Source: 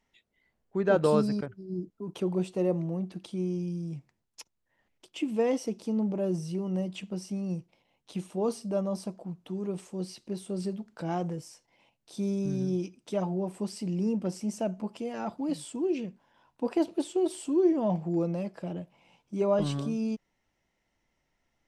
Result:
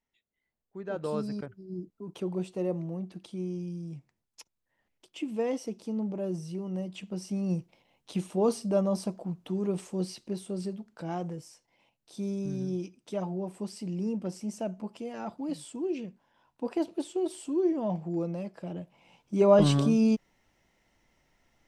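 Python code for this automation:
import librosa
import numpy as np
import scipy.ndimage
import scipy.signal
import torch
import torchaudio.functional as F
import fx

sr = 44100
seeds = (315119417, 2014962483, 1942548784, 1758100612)

y = fx.gain(x, sr, db=fx.line((0.89, -12.0), (1.46, -3.5), (6.9, -3.5), (7.52, 3.5), (9.99, 3.5), (10.8, -3.0), (18.59, -3.0), (19.66, 7.5)))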